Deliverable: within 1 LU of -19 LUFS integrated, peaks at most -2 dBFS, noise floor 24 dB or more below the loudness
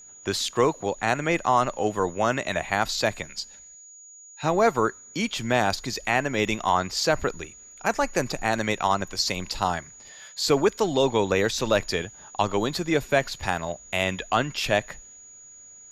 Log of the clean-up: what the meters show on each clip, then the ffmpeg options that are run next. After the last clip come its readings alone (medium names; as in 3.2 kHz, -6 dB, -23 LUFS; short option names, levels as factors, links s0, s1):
steady tone 6.8 kHz; tone level -45 dBFS; loudness -25.0 LUFS; peak level -6.5 dBFS; loudness target -19.0 LUFS
-> -af "bandreject=f=6800:w=30"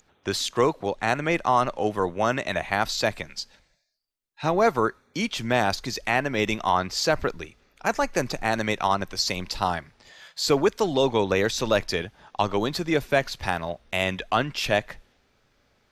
steady tone not found; loudness -25.0 LUFS; peak level -6.5 dBFS; loudness target -19.0 LUFS
-> -af "volume=2,alimiter=limit=0.794:level=0:latency=1"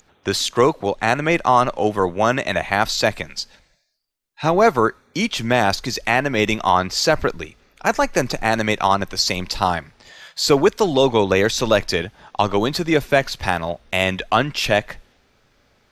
loudness -19.0 LUFS; peak level -2.0 dBFS; noise floor -61 dBFS